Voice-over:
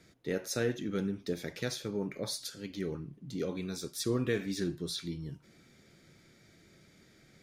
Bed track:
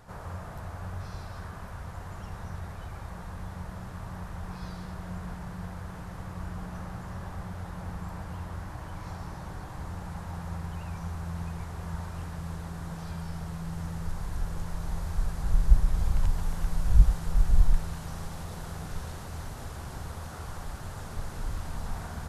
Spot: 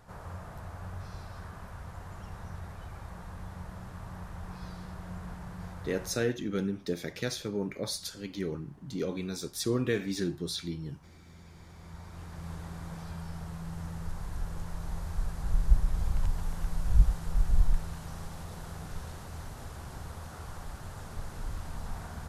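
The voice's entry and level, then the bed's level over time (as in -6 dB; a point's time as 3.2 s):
5.60 s, +2.0 dB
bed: 6.07 s -3.5 dB
6.31 s -20.5 dB
11.23 s -20.5 dB
12.51 s -3.5 dB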